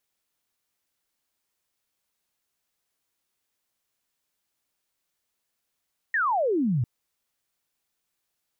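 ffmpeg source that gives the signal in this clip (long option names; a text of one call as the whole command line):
ffmpeg -f lavfi -i "aevalsrc='0.0891*clip(t/0.002,0,1)*clip((0.7-t)/0.002,0,1)*sin(2*PI*1900*0.7/log(110/1900)*(exp(log(110/1900)*t/0.7)-1))':duration=0.7:sample_rate=44100" out.wav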